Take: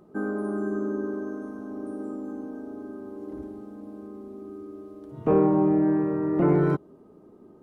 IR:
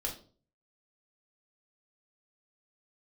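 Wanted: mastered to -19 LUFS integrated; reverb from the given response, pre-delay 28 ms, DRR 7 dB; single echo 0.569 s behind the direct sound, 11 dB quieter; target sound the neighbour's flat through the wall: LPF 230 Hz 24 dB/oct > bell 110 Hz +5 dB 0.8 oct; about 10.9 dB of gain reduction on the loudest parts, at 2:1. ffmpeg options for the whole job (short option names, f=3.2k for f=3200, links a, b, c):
-filter_complex "[0:a]acompressor=threshold=-37dB:ratio=2,aecho=1:1:569:0.282,asplit=2[a][b];[1:a]atrim=start_sample=2205,adelay=28[c];[b][c]afir=irnorm=-1:irlink=0,volume=-9dB[d];[a][d]amix=inputs=2:normalize=0,lowpass=f=230:w=0.5412,lowpass=f=230:w=1.3066,equalizer=f=110:t=o:w=0.8:g=5,volume=23.5dB"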